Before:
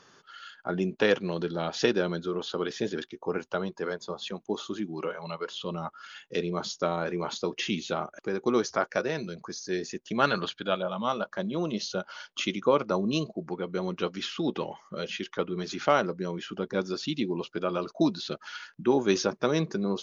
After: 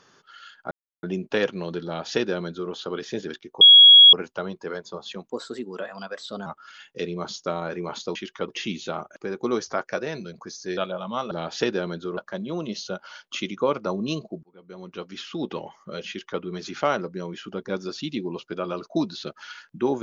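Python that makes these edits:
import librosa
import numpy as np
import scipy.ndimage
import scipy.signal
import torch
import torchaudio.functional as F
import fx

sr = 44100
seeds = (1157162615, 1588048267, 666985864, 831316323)

y = fx.edit(x, sr, fx.insert_silence(at_s=0.71, length_s=0.32),
    fx.duplicate(start_s=1.53, length_s=0.86, to_s=11.22),
    fx.insert_tone(at_s=3.29, length_s=0.52, hz=3320.0, db=-6.5),
    fx.speed_span(start_s=4.46, length_s=1.36, speed=1.17),
    fx.cut(start_s=9.8, length_s=0.88),
    fx.fade_in_span(start_s=13.48, length_s=1.06),
    fx.duplicate(start_s=15.13, length_s=0.33, to_s=7.51), tone=tone)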